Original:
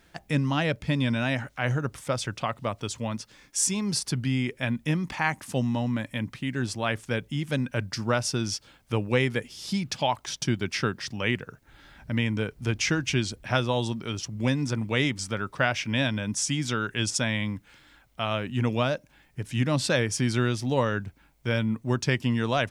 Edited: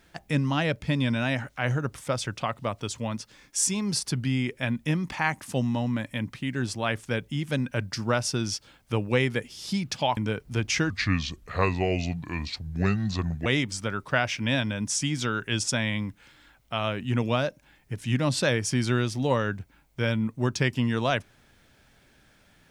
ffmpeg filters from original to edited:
-filter_complex "[0:a]asplit=4[s0][s1][s2][s3];[s0]atrim=end=10.172[s4];[s1]atrim=start=12.278:end=13.014[s5];[s2]atrim=start=13.01:end=14.93,asetpts=PTS-STARTPTS,asetrate=33075,aresample=44100[s6];[s3]atrim=start=14.926[s7];[s4][s5]acrossfade=d=0.004:c1=hsin:c2=hsin[s8];[s8][s6]acrossfade=d=0.004:c1=hsin:c2=hsin[s9];[s9][s7]acrossfade=d=0.004:c1=hsin:c2=hsin"

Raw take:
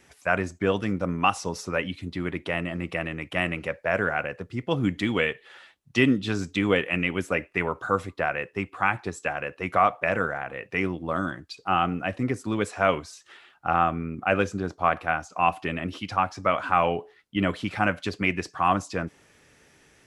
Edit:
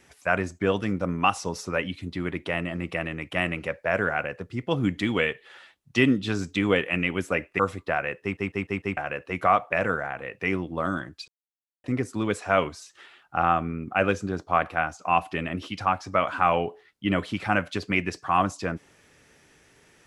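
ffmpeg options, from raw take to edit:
-filter_complex "[0:a]asplit=9[s0][s1][s2][s3][s4][s5][s6][s7][s8];[s0]atrim=end=7.592[s9];[s1]atrim=start=7.898:end=8.682[s10];[s2]atrim=start=8.528:end=8.682[s11];[s3]atrim=start=8.528:end=8.682[s12];[s4]atrim=start=8.528:end=8.682[s13];[s5]atrim=start=8.528:end=8.682[s14];[s6]atrim=start=9.278:end=11.59,asetpts=PTS-STARTPTS,afade=t=out:st=2.308:d=0.004:c=hsin[s15];[s7]atrim=start=11.59:end=12.15,asetpts=PTS-STARTPTS,volume=0[s16];[s8]atrim=start=12.15,asetpts=PTS-STARTPTS,afade=t=in:d=0.004:c=hsin[s17];[s9][s10]acrossfade=d=0.004:c1=hsin:c2=hsin[s18];[s18][s11]acrossfade=d=0.004:c1=hsin:c2=hsin[s19];[s19][s12]acrossfade=d=0.004:c1=hsin:c2=hsin[s20];[s20][s13]acrossfade=d=0.004:c1=hsin:c2=hsin[s21];[s21][s14]acrossfade=d=0.004:c1=hsin:c2=hsin[s22];[s15][s16][s17]concat=n=3:v=0:a=1[s23];[s22][s23]acrossfade=d=0.004:c1=hsin:c2=hsin"

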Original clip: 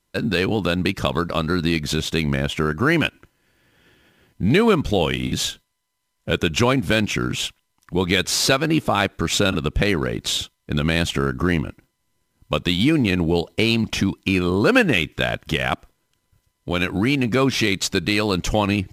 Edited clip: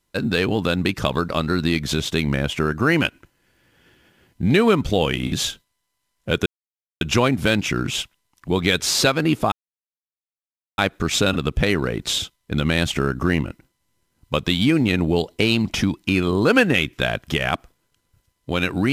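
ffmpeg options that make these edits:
-filter_complex "[0:a]asplit=3[s0][s1][s2];[s0]atrim=end=6.46,asetpts=PTS-STARTPTS,afade=t=out:st=6.456:d=0.004:c=hsin,apad=pad_dur=0.55[s3];[s1]atrim=start=6.46:end=8.97,asetpts=PTS-STARTPTS,afade=t=in:d=0.004:c=hsin,afade=t=out:st=2.506:d=0.004:c=hsin,apad=pad_dur=1.26[s4];[s2]atrim=start=8.97,asetpts=PTS-STARTPTS,afade=t=in:d=0.004:c=hsin[s5];[s3][s4][s5]concat=n=3:v=0:a=1"

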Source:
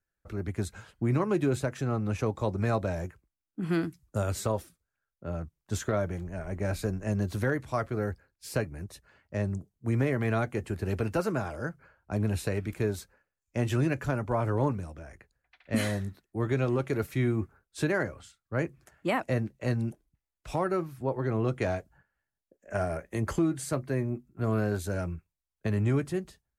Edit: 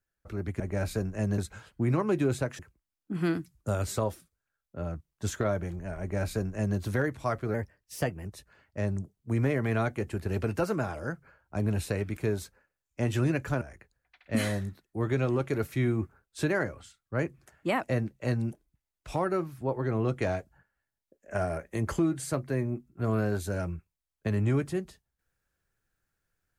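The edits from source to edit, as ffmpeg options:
-filter_complex "[0:a]asplit=7[s0][s1][s2][s3][s4][s5][s6];[s0]atrim=end=0.602[s7];[s1]atrim=start=6.478:end=7.262[s8];[s2]atrim=start=0.598:end=1.812[s9];[s3]atrim=start=3.068:end=8.024[s10];[s4]atrim=start=8.02:end=8.82,asetpts=PTS-STARTPTS,asetrate=49392,aresample=44100[s11];[s5]atrim=start=8.816:end=14.182[s12];[s6]atrim=start=15.008[s13];[s7][s8]acrossfade=d=0.004:c1=hsin:c2=hsin[s14];[s14][s9]acrossfade=d=0.004:c1=hsin:c2=hsin[s15];[s15][s10]acrossfade=d=0.004:c1=hsin:c2=hsin[s16];[s16][s11]acrossfade=d=0.004:c1=hsin:c2=hsin[s17];[s17][s12]acrossfade=d=0.004:c1=hsin:c2=hsin[s18];[s18][s13]acrossfade=d=0.004:c1=hsin:c2=hsin"

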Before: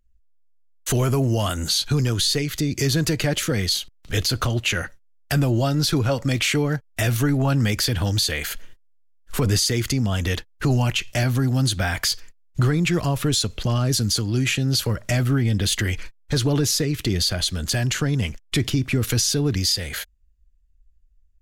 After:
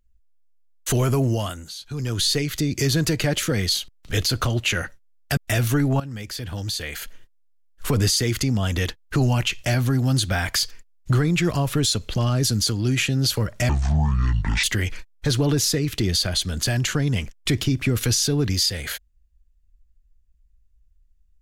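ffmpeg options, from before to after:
-filter_complex "[0:a]asplit=7[s0][s1][s2][s3][s4][s5][s6];[s0]atrim=end=1.65,asetpts=PTS-STARTPTS,afade=t=out:st=1.27:d=0.38:silence=0.177828[s7];[s1]atrim=start=1.65:end=1.88,asetpts=PTS-STARTPTS,volume=0.178[s8];[s2]atrim=start=1.88:end=5.372,asetpts=PTS-STARTPTS,afade=t=in:d=0.38:silence=0.177828[s9];[s3]atrim=start=6.858:end=7.49,asetpts=PTS-STARTPTS,afade=t=out:st=0.628:d=0.004:c=hsin:silence=0.158489[s10];[s4]atrim=start=7.49:end=15.184,asetpts=PTS-STARTPTS,afade=t=in:d=1.9:silence=0.158489[s11];[s5]atrim=start=15.18:end=15.7,asetpts=PTS-STARTPTS,asetrate=24255,aresample=44100[s12];[s6]atrim=start=15.696[s13];[s7][s8][s9]concat=n=3:v=0:a=1[s14];[s10][s11]concat=n=2:v=0:a=1[s15];[s14][s15]acrossfade=d=0.004:c1=hsin:c2=hsin[s16];[s16][s12]acrossfade=d=0.004:c1=hsin:c2=hsin[s17];[s17][s13]acrossfade=d=0.004:c1=hsin:c2=hsin"

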